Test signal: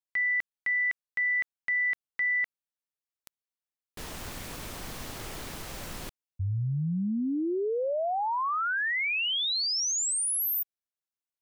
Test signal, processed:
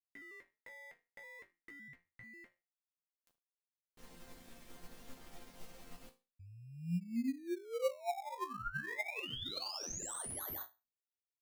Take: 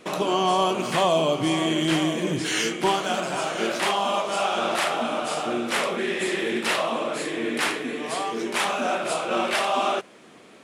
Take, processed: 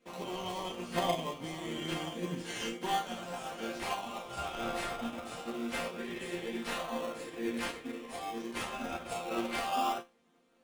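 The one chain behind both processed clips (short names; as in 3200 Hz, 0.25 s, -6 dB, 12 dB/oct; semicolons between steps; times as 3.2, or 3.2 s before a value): resonator bank F3 sus4, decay 0.29 s; in parallel at -6 dB: decimation with a swept rate 24×, swing 60% 0.26 Hz; on the sum: upward expander 1.5:1, over -56 dBFS; gain +5 dB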